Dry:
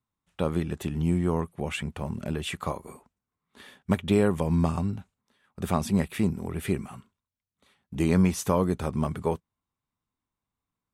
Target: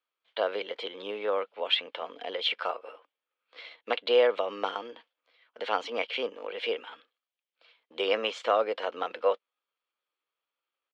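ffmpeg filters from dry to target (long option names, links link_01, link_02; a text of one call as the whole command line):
ffmpeg -i in.wav -af "asetrate=52444,aresample=44100,atempo=0.840896,highpass=frequency=470:width=0.5412,highpass=frequency=470:width=1.3066,equalizer=frequency=500:width_type=q:width=4:gain=6,equalizer=frequency=2300:width_type=q:width=4:gain=6,equalizer=frequency=3200:width_type=q:width=4:gain=10,lowpass=frequency=4600:width=0.5412,lowpass=frequency=4600:width=1.3066" out.wav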